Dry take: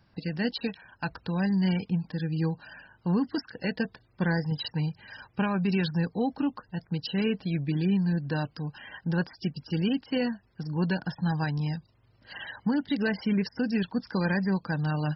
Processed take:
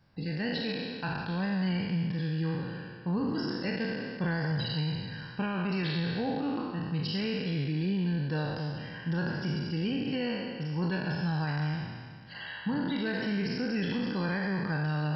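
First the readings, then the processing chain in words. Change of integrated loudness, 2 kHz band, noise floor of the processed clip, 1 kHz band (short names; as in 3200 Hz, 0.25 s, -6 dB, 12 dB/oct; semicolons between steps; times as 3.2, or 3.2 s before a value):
-2.5 dB, -0.5 dB, -44 dBFS, -1.5 dB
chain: spectral trails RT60 1.89 s; bell 150 Hz +3.5 dB 0.29 oct; limiter -18 dBFS, peak gain reduction 5 dB; gain -5 dB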